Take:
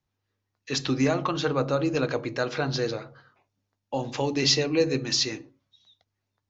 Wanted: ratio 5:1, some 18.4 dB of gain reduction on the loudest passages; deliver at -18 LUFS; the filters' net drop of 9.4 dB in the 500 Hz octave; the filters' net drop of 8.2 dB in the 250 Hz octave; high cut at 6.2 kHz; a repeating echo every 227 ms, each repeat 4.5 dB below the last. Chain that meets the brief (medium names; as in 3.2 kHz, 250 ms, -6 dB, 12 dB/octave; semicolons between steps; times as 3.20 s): low-pass 6.2 kHz; peaking EQ 250 Hz -7.5 dB; peaking EQ 500 Hz -9 dB; compression 5:1, threshold -41 dBFS; feedback delay 227 ms, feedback 60%, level -4.5 dB; trim +24 dB